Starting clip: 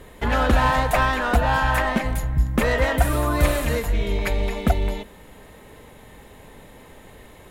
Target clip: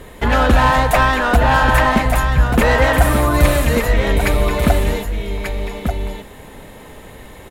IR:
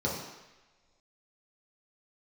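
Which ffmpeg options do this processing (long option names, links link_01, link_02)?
-af "acontrast=73,aecho=1:1:1188:0.473"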